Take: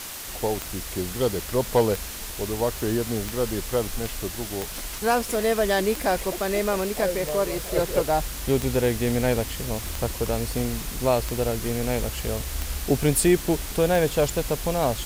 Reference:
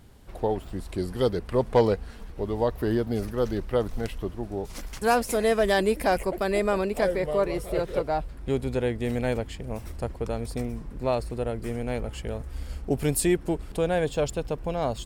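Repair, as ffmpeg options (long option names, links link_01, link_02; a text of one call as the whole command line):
ffmpeg -i in.wav -af "adeclick=threshold=4,afwtdn=0.018,asetnsamples=nb_out_samples=441:pad=0,asendcmd='7.76 volume volume -4dB',volume=0dB" out.wav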